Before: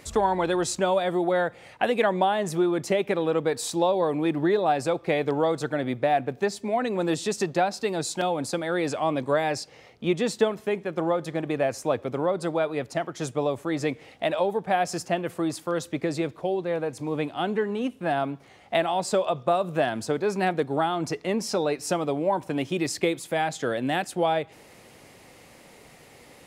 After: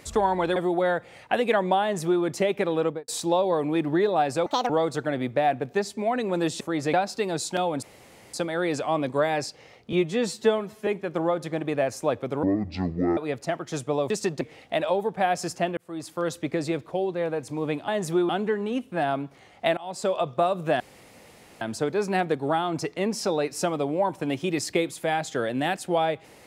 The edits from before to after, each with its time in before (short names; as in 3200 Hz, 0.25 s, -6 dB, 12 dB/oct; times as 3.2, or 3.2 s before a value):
0.56–1.06 cut
2.32–2.73 copy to 17.38
3.33–3.58 studio fade out
4.96–5.36 speed 170%
7.27–7.58 swap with 13.58–13.91
8.47 insert room tone 0.51 s
10.06–10.69 stretch 1.5×
12.25–12.65 speed 54%
15.27–15.73 fade in
18.86–19.26 fade in, from -20 dB
19.89 insert room tone 0.81 s